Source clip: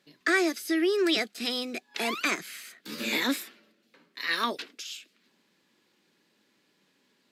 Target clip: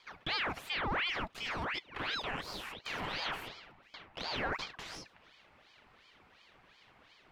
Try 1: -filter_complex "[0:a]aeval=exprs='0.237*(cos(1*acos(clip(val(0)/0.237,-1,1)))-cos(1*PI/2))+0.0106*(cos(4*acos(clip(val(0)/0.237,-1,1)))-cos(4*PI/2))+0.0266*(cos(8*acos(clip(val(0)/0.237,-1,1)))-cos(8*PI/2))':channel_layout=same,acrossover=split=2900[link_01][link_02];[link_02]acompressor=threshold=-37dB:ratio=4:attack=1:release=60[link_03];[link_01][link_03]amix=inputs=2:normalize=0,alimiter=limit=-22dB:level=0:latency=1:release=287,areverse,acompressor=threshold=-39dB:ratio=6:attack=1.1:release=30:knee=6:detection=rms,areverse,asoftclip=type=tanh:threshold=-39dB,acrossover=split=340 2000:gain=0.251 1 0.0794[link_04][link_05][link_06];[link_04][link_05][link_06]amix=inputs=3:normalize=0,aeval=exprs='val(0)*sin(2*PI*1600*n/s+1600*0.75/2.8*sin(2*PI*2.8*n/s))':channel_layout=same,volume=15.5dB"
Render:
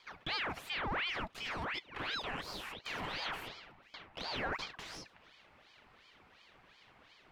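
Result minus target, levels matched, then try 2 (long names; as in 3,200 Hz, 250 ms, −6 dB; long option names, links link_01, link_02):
soft clipping: distortion +13 dB
-filter_complex "[0:a]aeval=exprs='0.237*(cos(1*acos(clip(val(0)/0.237,-1,1)))-cos(1*PI/2))+0.0106*(cos(4*acos(clip(val(0)/0.237,-1,1)))-cos(4*PI/2))+0.0266*(cos(8*acos(clip(val(0)/0.237,-1,1)))-cos(8*PI/2))':channel_layout=same,acrossover=split=2900[link_01][link_02];[link_02]acompressor=threshold=-37dB:ratio=4:attack=1:release=60[link_03];[link_01][link_03]amix=inputs=2:normalize=0,alimiter=limit=-22dB:level=0:latency=1:release=287,areverse,acompressor=threshold=-39dB:ratio=6:attack=1.1:release=30:knee=6:detection=rms,areverse,asoftclip=type=tanh:threshold=-31dB,acrossover=split=340 2000:gain=0.251 1 0.0794[link_04][link_05][link_06];[link_04][link_05][link_06]amix=inputs=3:normalize=0,aeval=exprs='val(0)*sin(2*PI*1600*n/s+1600*0.75/2.8*sin(2*PI*2.8*n/s))':channel_layout=same,volume=15.5dB"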